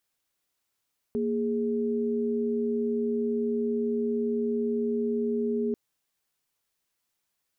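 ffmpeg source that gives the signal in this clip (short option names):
-f lavfi -i "aevalsrc='0.0422*(sin(2*PI*233.08*t)+sin(2*PI*415.3*t))':d=4.59:s=44100"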